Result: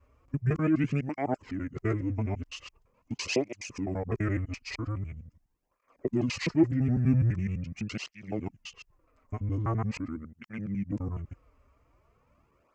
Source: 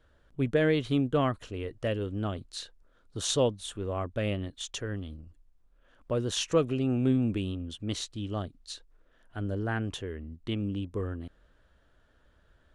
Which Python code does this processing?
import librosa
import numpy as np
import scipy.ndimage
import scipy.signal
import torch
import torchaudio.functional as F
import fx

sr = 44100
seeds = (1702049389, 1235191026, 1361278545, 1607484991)

y = fx.local_reverse(x, sr, ms=84.0)
y = fx.formant_shift(y, sr, semitones=-6)
y = fx.peak_eq(y, sr, hz=3700.0, db=-8.0, octaves=0.62)
y = fx.flanger_cancel(y, sr, hz=0.43, depth_ms=6.2)
y = y * 10.0 ** (4.0 / 20.0)